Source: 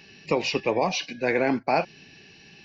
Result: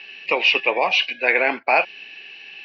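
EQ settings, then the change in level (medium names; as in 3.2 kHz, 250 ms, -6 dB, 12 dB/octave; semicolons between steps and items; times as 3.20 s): high-pass 550 Hz 12 dB/octave; resonant low-pass 2.8 kHz, resonance Q 3; +5.0 dB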